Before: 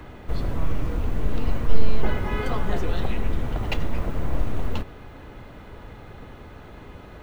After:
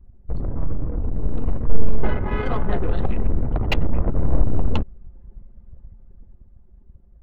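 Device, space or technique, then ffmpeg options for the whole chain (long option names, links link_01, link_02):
voice memo with heavy noise removal: -af "anlmdn=63.1,dynaudnorm=framelen=200:gausssize=17:maxgain=7.5dB,volume=1dB"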